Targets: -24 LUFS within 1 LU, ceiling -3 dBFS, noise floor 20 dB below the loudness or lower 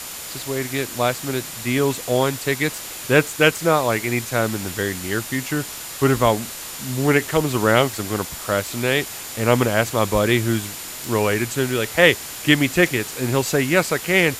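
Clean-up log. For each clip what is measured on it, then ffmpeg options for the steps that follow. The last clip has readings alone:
steady tone 7100 Hz; tone level -41 dBFS; noise floor -33 dBFS; noise floor target -41 dBFS; loudness -20.5 LUFS; peak -1.5 dBFS; loudness target -24.0 LUFS
-> -af "bandreject=f=7.1k:w=30"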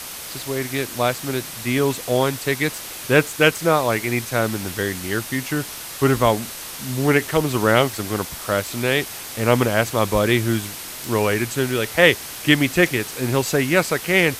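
steady tone none; noise floor -34 dBFS; noise floor target -41 dBFS
-> -af "afftdn=nr=7:nf=-34"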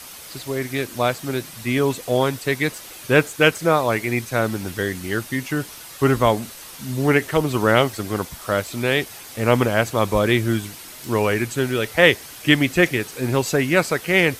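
noise floor -39 dBFS; noise floor target -41 dBFS
-> -af "afftdn=nr=6:nf=-39"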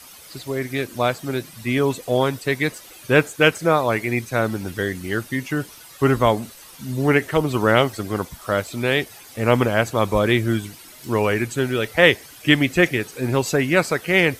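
noise floor -44 dBFS; loudness -20.5 LUFS; peak -1.5 dBFS; loudness target -24.0 LUFS
-> -af "volume=-3.5dB"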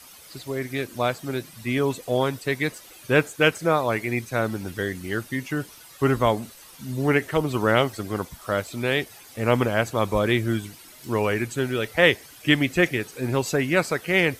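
loudness -24.0 LUFS; peak -5.0 dBFS; noise floor -47 dBFS

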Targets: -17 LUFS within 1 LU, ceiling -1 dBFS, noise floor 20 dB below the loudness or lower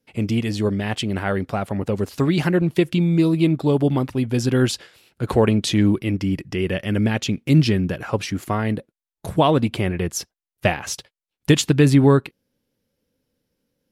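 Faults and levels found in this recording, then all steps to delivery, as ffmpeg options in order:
loudness -20.5 LUFS; peak -3.5 dBFS; loudness target -17.0 LUFS
-> -af "volume=3.5dB,alimiter=limit=-1dB:level=0:latency=1"

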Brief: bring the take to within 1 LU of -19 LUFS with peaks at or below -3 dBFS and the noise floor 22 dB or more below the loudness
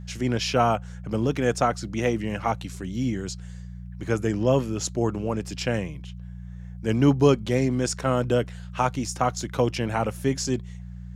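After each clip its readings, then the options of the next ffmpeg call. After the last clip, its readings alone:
hum 60 Hz; harmonics up to 180 Hz; hum level -35 dBFS; loudness -25.5 LUFS; peak -6.0 dBFS; loudness target -19.0 LUFS
-> -af "bandreject=f=60:t=h:w=4,bandreject=f=120:t=h:w=4,bandreject=f=180:t=h:w=4"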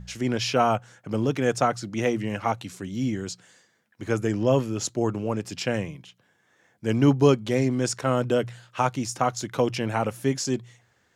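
hum none; loudness -25.5 LUFS; peak -6.5 dBFS; loudness target -19.0 LUFS
-> -af "volume=6.5dB,alimiter=limit=-3dB:level=0:latency=1"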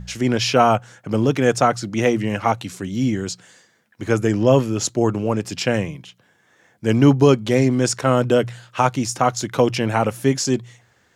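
loudness -19.5 LUFS; peak -3.0 dBFS; noise floor -60 dBFS

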